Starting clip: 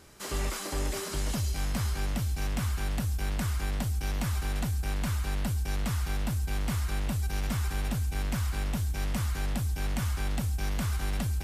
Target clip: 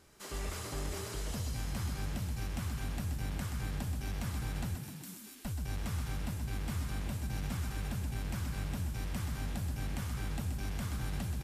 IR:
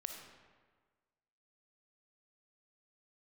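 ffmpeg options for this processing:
-filter_complex "[0:a]asettb=1/sr,asplit=3[s0][s1][s2];[s0]atrim=end=4.754[s3];[s1]atrim=start=4.75:end=5.45,asetpts=PTS-STARTPTS,afade=t=in:d=0.004:c=qsin,afade=t=out:st=0.696:d=0.004:c=qsin,aderivative[s4];[s2]atrim=start=5.446[s5];[s3][s4]acrossfade=d=0.004:c1=hsin:c2=qsin[s6];[s6][s5]acrossfade=d=0.004:c1=qsin:c2=hsin,asplit=9[s7][s8][s9][s10][s11][s12][s13][s14][s15];[s8]adelay=127,afreqshift=33,volume=0.447[s16];[s9]adelay=254,afreqshift=66,volume=0.275[s17];[s10]adelay=381,afreqshift=99,volume=0.172[s18];[s11]adelay=508,afreqshift=132,volume=0.106[s19];[s12]adelay=635,afreqshift=165,volume=0.0661[s20];[s13]adelay=762,afreqshift=198,volume=0.0407[s21];[s14]adelay=889,afreqshift=231,volume=0.0254[s22];[s15]adelay=1016,afreqshift=264,volume=0.0157[s23];[s7][s16][s17][s18][s19][s20][s21][s22][s23]amix=inputs=9:normalize=0,volume=0.398"

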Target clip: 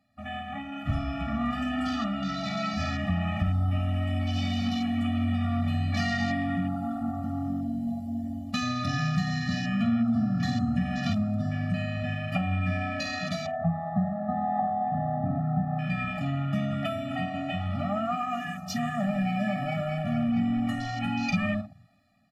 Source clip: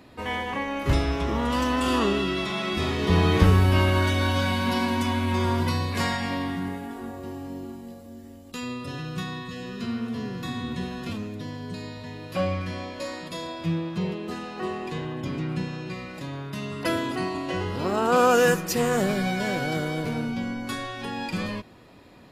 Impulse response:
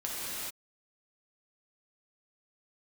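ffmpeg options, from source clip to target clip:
-filter_complex "[0:a]asettb=1/sr,asplit=3[s0][s1][s2];[s0]atrim=end=13.464[s3];[s1]atrim=start=13.46:end=15.79,asetpts=PTS-STARTPTS,afade=t=in:d=0.004:c=qsin,afade=t=out:st=2.326:d=0.004:c=qsin,lowpass=f=850:t=q:w=4[s4];[s2]atrim=start=15.786[s5];[s3][s4]acrossfade=d=0.004:c1=hsin:c2=qsin[s6];[s6][s5]acrossfade=d=0.004:c1=qsin:c2=hsin,aecho=1:1:10|51:0.335|0.335,dynaudnorm=f=420:g=7:m=5.96,lowshelf=f=100:g=-7.5,acompressor=threshold=0.1:ratio=8,afwtdn=0.0251,afftfilt=real='re*eq(mod(floor(b*sr/1024/280),2),0)':imag='im*eq(mod(floor(b*sr/1024/280),2),0)':win_size=1024:overlap=0.75,volume=0.891"

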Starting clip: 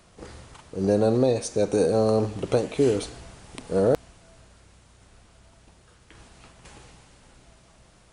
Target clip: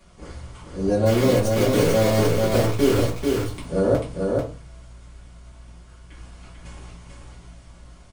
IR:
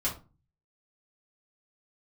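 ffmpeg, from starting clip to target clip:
-filter_complex "[0:a]asplit=3[s0][s1][s2];[s0]afade=t=out:st=1.05:d=0.02[s3];[s1]acrusher=bits=5:dc=4:mix=0:aa=0.000001,afade=t=in:st=1.05:d=0.02,afade=t=out:st=3.19:d=0.02[s4];[s2]afade=t=in:st=3.19:d=0.02[s5];[s3][s4][s5]amix=inputs=3:normalize=0,aecho=1:1:441:0.668[s6];[1:a]atrim=start_sample=2205[s7];[s6][s7]afir=irnorm=-1:irlink=0,volume=0.596"

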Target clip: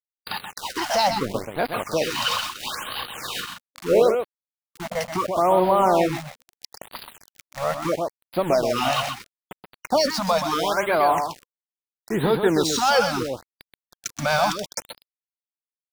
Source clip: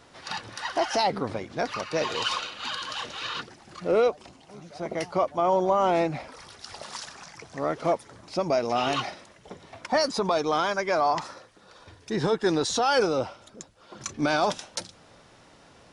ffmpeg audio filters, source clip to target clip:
-filter_complex "[0:a]acompressor=mode=upward:threshold=0.00708:ratio=2.5,aeval=exprs='val(0)*gte(abs(val(0)),0.0224)':c=same,asettb=1/sr,asplit=3[s0][s1][s2];[s0]atrim=end=3.304[s3];[s1]atrim=start=3.3:end=4.02,asetpts=PTS-STARTPTS,afade=t=in:d=0.004:c=qsin,afade=t=out:st=0.716:d=0.004:c=qsin,asplit=2[s4][s5];[s5]adelay=42,volume=0.631[s6];[s4][s6]amix=inputs=2:normalize=0,atrim=end_sample=31752[s7];[s2]atrim=start=4.016[s8];[s3][s7]acrossfade=d=0.004:c1=hsin:c2=qsin[s9];[s9][s8]acrossfade=d=0.004:c1=qsin:c2=hsin,asplit=2[s10][s11];[s11]aecho=0:1:128:0.473[s12];[s10][s12]amix=inputs=2:normalize=0,afftfilt=real='re*(1-between(b*sr/1024,320*pow(7100/320,0.5+0.5*sin(2*PI*0.75*pts/sr))/1.41,320*pow(7100/320,0.5+0.5*sin(2*PI*0.75*pts/sr))*1.41))':imag='im*(1-between(b*sr/1024,320*pow(7100/320,0.5+0.5*sin(2*PI*0.75*pts/sr))/1.41,320*pow(7100/320,0.5+0.5*sin(2*PI*0.75*pts/sr))*1.41))':win_size=1024:overlap=0.75,volume=1.58"

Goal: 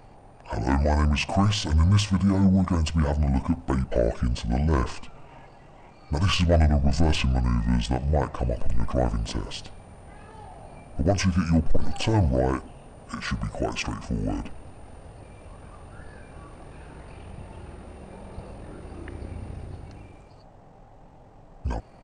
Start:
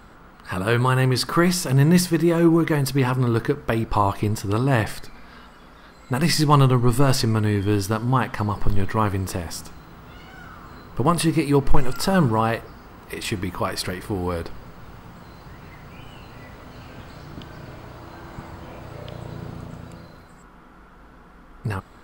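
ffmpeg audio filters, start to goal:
-af "asoftclip=type=tanh:threshold=0.335,asetrate=25476,aresample=44100,atempo=1.73107,volume=0.841"

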